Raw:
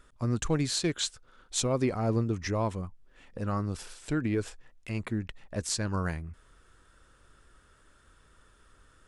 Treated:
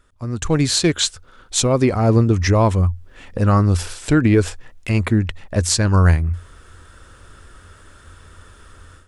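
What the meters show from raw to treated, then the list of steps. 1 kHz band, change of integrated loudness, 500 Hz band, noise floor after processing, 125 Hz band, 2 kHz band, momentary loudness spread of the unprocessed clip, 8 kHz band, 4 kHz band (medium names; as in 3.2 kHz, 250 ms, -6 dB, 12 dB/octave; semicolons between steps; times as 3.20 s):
+13.0 dB, +13.5 dB, +12.5 dB, -47 dBFS, +16.0 dB, +13.0 dB, 12 LU, +12.0 dB, +12.0 dB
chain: level rider gain up to 15 dB; peaking EQ 87 Hz +12.5 dB 0.26 oct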